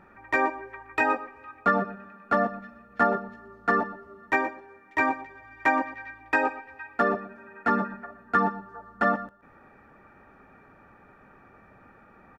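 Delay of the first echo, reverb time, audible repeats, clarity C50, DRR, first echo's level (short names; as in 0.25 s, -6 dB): 0.121 s, none, 1, none, none, -15.5 dB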